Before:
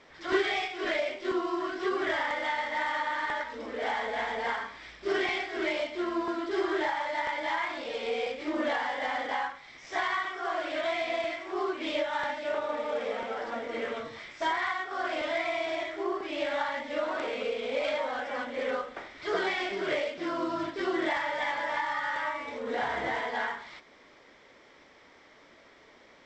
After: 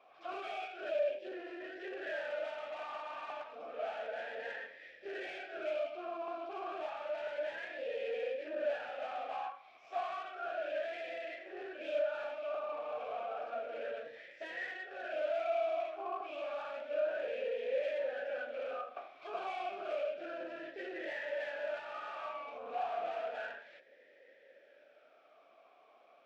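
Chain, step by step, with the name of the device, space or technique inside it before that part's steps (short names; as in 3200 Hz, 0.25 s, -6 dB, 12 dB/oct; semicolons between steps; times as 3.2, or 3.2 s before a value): 0.89–1.33 band shelf 1500 Hz -10.5 dB 1.1 oct; talk box (tube stage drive 34 dB, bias 0.65; vowel sweep a-e 0.31 Hz); gain +7.5 dB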